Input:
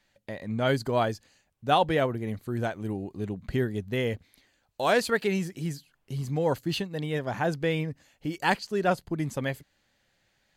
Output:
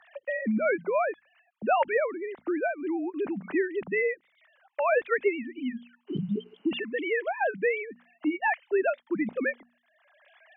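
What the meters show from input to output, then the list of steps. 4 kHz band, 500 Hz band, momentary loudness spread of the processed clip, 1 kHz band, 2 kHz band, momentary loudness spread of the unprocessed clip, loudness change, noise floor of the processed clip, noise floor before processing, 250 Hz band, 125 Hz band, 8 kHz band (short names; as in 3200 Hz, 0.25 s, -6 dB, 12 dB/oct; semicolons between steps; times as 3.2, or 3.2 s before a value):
-10.5 dB, +1.0 dB, 9 LU, -1.5 dB, +2.5 dB, 12 LU, 0.0 dB, -71 dBFS, -72 dBFS, 0.0 dB, -13.0 dB, under -35 dB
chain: sine-wave speech; notches 60/120/180/240 Hz; spectral repair 6.1–6.69, 450–3000 Hz before; dynamic EQ 2100 Hz, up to +7 dB, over -49 dBFS, Q 2.5; three-band squash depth 70%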